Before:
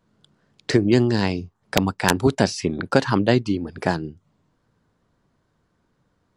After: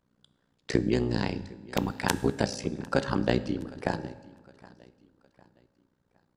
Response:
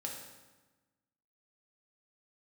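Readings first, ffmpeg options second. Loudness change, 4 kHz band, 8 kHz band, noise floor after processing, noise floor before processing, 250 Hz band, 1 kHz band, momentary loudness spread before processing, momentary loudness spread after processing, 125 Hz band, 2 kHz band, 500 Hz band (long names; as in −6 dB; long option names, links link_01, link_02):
−8.5 dB, −9.0 dB, −8.0 dB, −74 dBFS, −69 dBFS, −8.5 dB, −8.0 dB, 9 LU, 8 LU, −8.5 dB, −8.5 dB, −8.0 dB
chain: -filter_complex "[0:a]asplit=2[link_01][link_02];[link_02]aecho=0:1:761|1522|2283:0.0794|0.0302|0.0115[link_03];[link_01][link_03]amix=inputs=2:normalize=0,tremolo=f=61:d=0.974,asplit=2[link_04][link_05];[1:a]atrim=start_sample=2205[link_06];[link_05][link_06]afir=irnorm=-1:irlink=0,volume=-8.5dB[link_07];[link_04][link_07]amix=inputs=2:normalize=0,volume=-6dB"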